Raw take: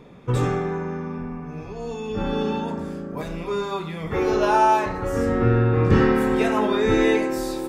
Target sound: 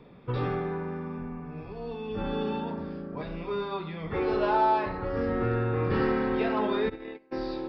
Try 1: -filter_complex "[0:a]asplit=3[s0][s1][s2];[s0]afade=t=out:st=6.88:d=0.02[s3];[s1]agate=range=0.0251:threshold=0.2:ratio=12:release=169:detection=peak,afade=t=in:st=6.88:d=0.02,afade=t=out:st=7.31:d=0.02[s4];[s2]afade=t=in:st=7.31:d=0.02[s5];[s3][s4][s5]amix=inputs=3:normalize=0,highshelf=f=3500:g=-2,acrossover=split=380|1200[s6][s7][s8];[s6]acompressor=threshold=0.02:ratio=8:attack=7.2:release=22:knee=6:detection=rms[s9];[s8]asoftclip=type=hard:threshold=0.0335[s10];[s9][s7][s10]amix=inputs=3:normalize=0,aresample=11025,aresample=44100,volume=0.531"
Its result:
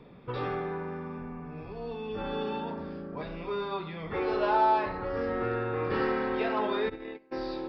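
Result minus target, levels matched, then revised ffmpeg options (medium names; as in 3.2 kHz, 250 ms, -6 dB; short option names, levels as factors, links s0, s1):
compression: peak gain reduction +9.5 dB
-filter_complex "[0:a]asplit=3[s0][s1][s2];[s0]afade=t=out:st=6.88:d=0.02[s3];[s1]agate=range=0.0251:threshold=0.2:ratio=12:release=169:detection=peak,afade=t=in:st=6.88:d=0.02,afade=t=out:st=7.31:d=0.02[s4];[s2]afade=t=in:st=7.31:d=0.02[s5];[s3][s4][s5]amix=inputs=3:normalize=0,highshelf=f=3500:g=-2,acrossover=split=380|1200[s6][s7][s8];[s6]acompressor=threshold=0.0708:ratio=8:attack=7.2:release=22:knee=6:detection=rms[s9];[s8]asoftclip=type=hard:threshold=0.0335[s10];[s9][s7][s10]amix=inputs=3:normalize=0,aresample=11025,aresample=44100,volume=0.531"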